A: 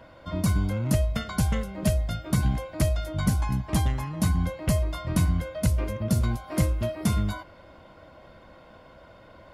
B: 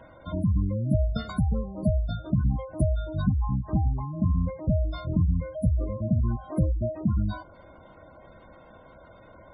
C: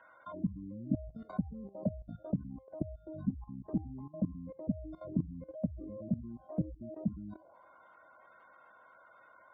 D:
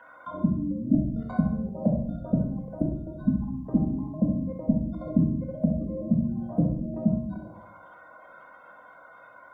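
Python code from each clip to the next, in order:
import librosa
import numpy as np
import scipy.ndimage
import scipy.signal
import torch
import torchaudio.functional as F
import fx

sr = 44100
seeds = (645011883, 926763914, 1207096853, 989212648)

y1 = fx.dynamic_eq(x, sr, hz=2100.0, q=1.5, threshold_db=-53.0, ratio=4.0, max_db=-5)
y1 = fx.spec_gate(y1, sr, threshold_db=-20, keep='strong')
y2 = fx.auto_wah(y1, sr, base_hz=270.0, top_hz=1500.0, q=2.8, full_db=-23.5, direction='down')
y2 = fx.level_steps(y2, sr, step_db=16)
y2 = y2 * 10.0 ** (4.0 / 20.0)
y3 = fx.echo_feedback(y2, sr, ms=65, feedback_pct=47, wet_db=-8.0)
y3 = fx.room_shoebox(y3, sr, seeds[0], volume_m3=660.0, walls='furnished', distance_m=1.9)
y3 = y3 * 10.0 ** (7.5 / 20.0)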